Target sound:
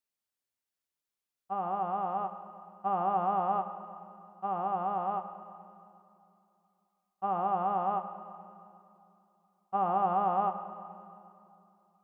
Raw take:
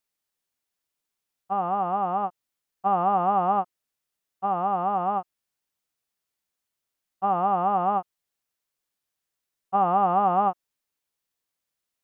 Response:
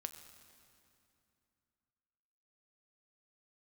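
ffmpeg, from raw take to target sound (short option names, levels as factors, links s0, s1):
-filter_complex "[1:a]atrim=start_sample=2205[s0];[0:a][s0]afir=irnorm=-1:irlink=0,volume=0.631"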